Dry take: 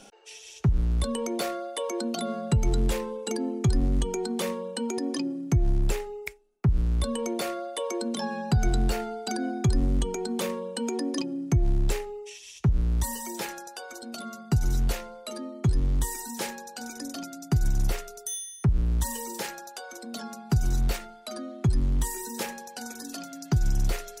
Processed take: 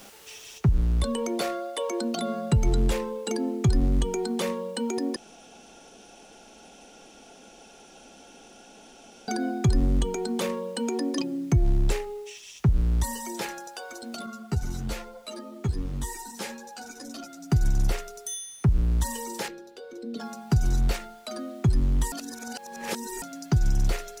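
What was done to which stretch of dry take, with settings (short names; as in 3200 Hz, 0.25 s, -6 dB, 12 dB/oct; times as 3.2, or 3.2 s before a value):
0.58 noise floor step -50 dB -60 dB
5.16–9.28 room tone
14.26–17.5 ensemble effect
19.48–20.2 EQ curve 170 Hz 0 dB, 290 Hz +4 dB, 450 Hz +7 dB, 710 Hz -15 dB, 3900 Hz -6 dB, 6800 Hz -16 dB
22.12–23.22 reverse
whole clip: high shelf 11000 Hz -8 dB; gain +1.5 dB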